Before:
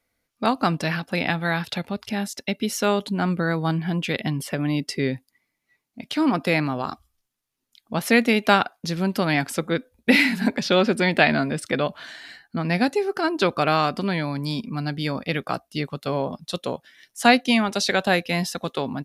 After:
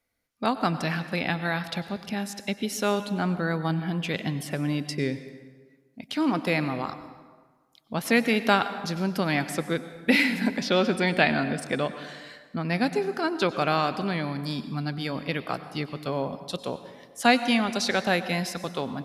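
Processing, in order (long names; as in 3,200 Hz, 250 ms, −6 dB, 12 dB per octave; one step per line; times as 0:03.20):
dense smooth reverb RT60 1.5 s, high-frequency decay 0.65×, pre-delay 85 ms, DRR 11.5 dB
level −4 dB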